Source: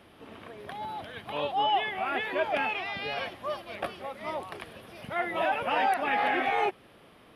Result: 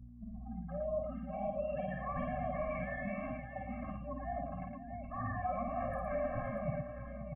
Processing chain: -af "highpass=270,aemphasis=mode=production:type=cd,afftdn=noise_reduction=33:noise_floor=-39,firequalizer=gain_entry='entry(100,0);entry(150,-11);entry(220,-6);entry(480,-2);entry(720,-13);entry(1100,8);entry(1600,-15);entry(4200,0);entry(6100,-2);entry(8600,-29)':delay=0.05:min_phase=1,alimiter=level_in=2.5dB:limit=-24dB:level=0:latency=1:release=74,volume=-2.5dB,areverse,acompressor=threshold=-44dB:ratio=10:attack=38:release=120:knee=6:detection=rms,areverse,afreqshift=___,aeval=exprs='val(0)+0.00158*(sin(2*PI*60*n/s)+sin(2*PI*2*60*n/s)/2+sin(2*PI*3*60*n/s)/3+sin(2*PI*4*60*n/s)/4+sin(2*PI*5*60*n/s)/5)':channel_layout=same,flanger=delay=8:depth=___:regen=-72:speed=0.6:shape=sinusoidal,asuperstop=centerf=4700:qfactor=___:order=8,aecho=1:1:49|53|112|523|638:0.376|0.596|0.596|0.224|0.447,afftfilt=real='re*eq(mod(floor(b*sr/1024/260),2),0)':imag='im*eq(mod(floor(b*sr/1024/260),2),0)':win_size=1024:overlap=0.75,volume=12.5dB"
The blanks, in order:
-240, 3.9, 0.59